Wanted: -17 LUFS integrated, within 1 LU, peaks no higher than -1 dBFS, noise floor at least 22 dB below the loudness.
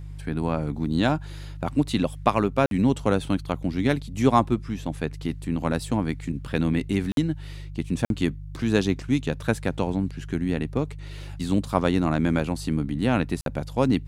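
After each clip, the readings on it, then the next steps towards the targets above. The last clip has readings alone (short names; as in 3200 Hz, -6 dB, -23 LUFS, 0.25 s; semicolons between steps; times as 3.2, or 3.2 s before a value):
dropouts 4; longest dropout 52 ms; hum 50 Hz; harmonics up to 150 Hz; hum level -35 dBFS; loudness -25.5 LUFS; peak -4.5 dBFS; loudness target -17.0 LUFS
-> interpolate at 2.66/7.12/8.05/13.41, 52 ms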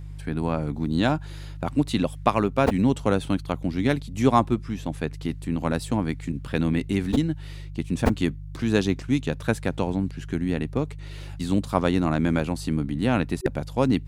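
dropouts 0; hum 50 Hz; harmonics up to 150 Hz; hum level -35 dBFS
-> de-hum 50 Hz, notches 3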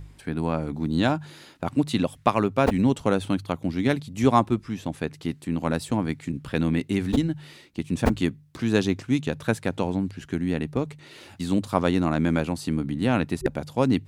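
hum none; loudness -25.5 LUFS; peak -4.5 dBFS; loudness target -17.0 LUFS
-> gain +8.5 dB; limiter -1 dBFS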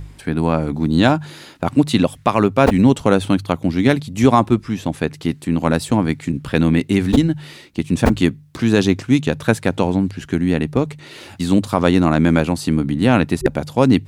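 loudness -17.5 LUFS; peak -1.0 dBFS; noise floor -42 dBFS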